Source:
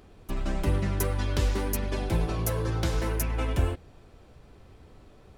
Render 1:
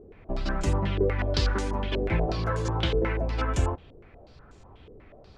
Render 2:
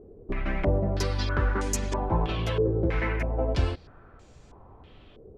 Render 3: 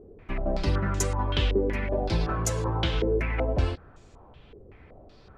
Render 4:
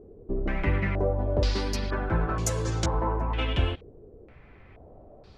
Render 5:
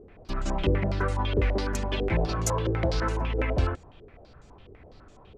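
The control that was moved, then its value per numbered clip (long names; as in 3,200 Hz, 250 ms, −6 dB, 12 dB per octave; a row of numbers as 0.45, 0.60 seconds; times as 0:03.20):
low-pass on a step sequencer, speed: 8.2, 3.1, 5.3, 2.1, 12 Hertz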